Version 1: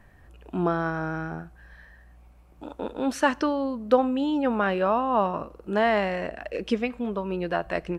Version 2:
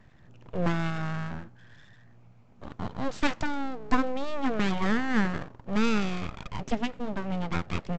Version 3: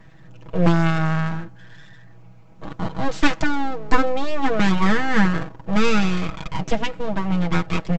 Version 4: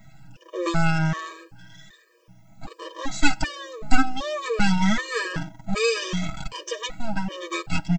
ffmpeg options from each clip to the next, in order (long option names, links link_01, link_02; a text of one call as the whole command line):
ffmpeg -i in.wav -af "aresample=16000,aeval=exprs='abs(val(0))':channel_layout=same,aresample=44100,equalizer=frequency=160:width_type=o:width=1.8:gain=7.5,volume=-3dB" out.wav
ffmpeg -i in.wav -af "aecho=1:1:6.2:0.77,volume=6.5dB" out.wav
ffmpeg -i in.wav -af "afftfilt=real='re*pow(10,8/40*sin(2*PI*(1.2*log(max(b,1)*sr/1024/100)/log(2)-(1.6)*(pts-256)/sr)))':imag='im*pow(10,8/40*sin(2*PI*(1.2*log(max(b,1)*sr/1024/100)/log(2)-(1.6)*(pts-256)/sr)))':win_size=1024:overlap=0.75,aemphasis=mode=production:type=75kf,afftfilt=real='re*gt(sin(2*PI*1.3*pts/sr)*(1-2*mod(floor(b*sr/1024/320),2)),0)':imag='im*gt(sin(2*PI*1.3*pts/sr)*(1-2*mod(floor(b*sr/1024/320),2)),0)':win_size=1024:overlap=0.75,volume=-2.5dB" out.wav